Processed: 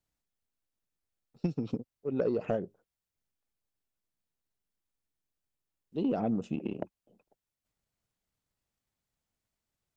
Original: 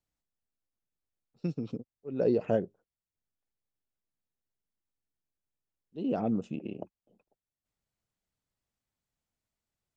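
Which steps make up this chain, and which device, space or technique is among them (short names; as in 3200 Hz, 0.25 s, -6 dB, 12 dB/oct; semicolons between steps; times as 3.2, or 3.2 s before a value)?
drum-bus smash (transient shaper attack +7 dB, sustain +2 dB; compressor 6:1, threshold -25 dBFS, peak gain reduction 8 dB; soft clip -20 dBFS, distortion -18 dB); gain +1 dB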